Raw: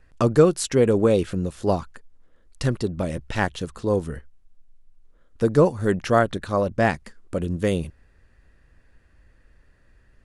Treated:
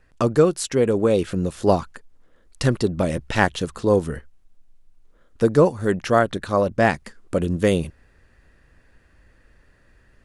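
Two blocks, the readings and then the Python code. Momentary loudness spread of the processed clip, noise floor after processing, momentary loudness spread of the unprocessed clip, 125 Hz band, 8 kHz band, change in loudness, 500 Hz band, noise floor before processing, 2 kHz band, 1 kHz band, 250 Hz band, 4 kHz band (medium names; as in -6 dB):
7 LU, -57 dBFS, 11 LU, +0.5 dB, +1.0 dB, +1.5 dB, +1.5 dB, -58 dBFS, +3.5 dB, +2.5 dB, +1.5 dB, +3.0 dB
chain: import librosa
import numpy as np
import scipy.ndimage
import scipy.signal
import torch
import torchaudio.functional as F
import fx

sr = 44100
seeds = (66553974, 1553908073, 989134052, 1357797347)

y = fx.low_shelf(x, sr, hz=110.0, db=-5.5)
y = fx.rider(y, sr, range_db=3, speed_s=0.5)
y = y * 10.0 ** (2.5 / 20.0)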